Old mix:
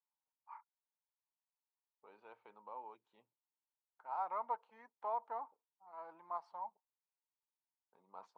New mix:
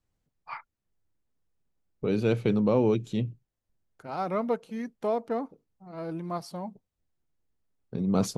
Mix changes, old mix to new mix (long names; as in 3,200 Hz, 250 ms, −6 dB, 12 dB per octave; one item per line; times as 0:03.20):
first voice +11.0 dB
master: remove four-pole ladder band-pass 990 Hz, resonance 75%